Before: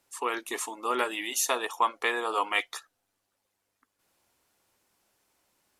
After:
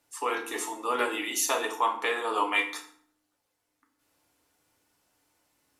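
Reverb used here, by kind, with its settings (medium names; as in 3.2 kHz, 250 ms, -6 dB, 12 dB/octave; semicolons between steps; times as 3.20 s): FDN reverb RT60 0.57 s, low-frequency decay 1.55×, high-frequency decay 0.75×, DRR 1 dB; trim -2 dB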